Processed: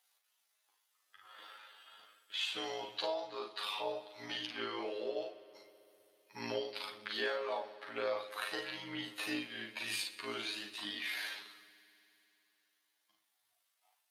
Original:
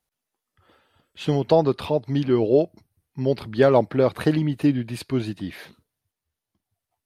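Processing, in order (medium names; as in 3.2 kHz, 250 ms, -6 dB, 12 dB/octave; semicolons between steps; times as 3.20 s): high-pass 970 Hz 12 dB/octave; peaking EQ 3.6 kHz +3.5 dB 0.78 oct; compression 6:1, threshold -44 dBFS, peak gain reduction 22 dB; chorus 1.1 Hz, delay 19.5 ms, depth 3.7 ms; granular stretch 2×, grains 38 ms; multi-head delay 65 ms, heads second and third, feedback 69%, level -21 dB; on a send at -11 dB: reverberation, pre-delay 42 ms; on the sum: trim +10.5 dB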